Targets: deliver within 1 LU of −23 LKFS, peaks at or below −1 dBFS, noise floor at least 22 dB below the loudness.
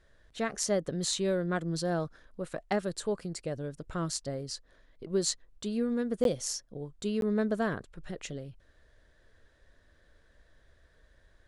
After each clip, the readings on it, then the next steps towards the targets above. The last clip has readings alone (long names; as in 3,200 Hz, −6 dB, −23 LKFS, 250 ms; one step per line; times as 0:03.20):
number of dropouts 2; longest dropout 12 ms; integrated loudness −33.0 LKFS; sample peak −13.5 dBFS; target loudness −23.0 LKFS
→ repair the gap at 0:06.24/0:07.21, 12 ms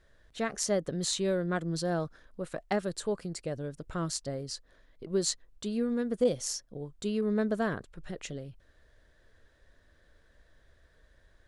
number of dropouts 0; integrated loudness −33.0 LKFS; sample peak −13.5 dBFS; target loudness −23.0 LKFS
→ level +10 dB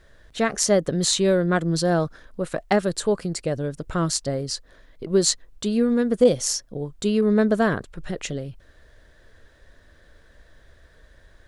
integrated loudness −23.0 LKFS; sample peak −3.5 dBFS; background noise floor −55 dBFS